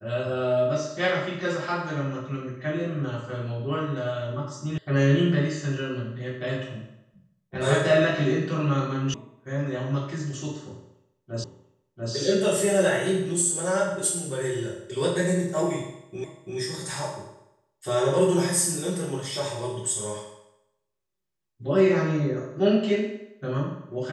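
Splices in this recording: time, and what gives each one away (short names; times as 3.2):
4.78 sound cut off
9.14 sound cut off
11.44 repeat of the last 0.69 s
16.24 repeat of the last 0.34 s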